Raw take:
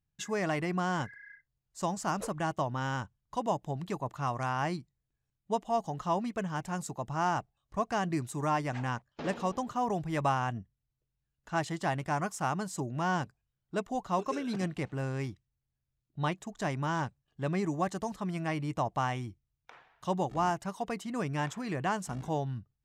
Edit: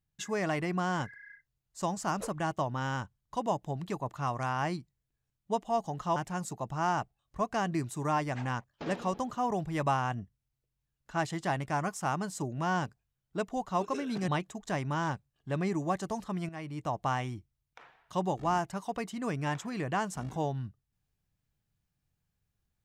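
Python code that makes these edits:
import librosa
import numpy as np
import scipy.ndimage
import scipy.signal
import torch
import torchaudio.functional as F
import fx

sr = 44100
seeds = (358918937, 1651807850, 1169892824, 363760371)

y = fx.edit(x, sr, fx.cut(start_s=6.16, length_s=0.38),
    fx.cut(start_s=14.66, length_s=1.54),
    fx.fade_in_from(start_s=18.41, length_s=0.57, floor_db=-12.0), tone=tone)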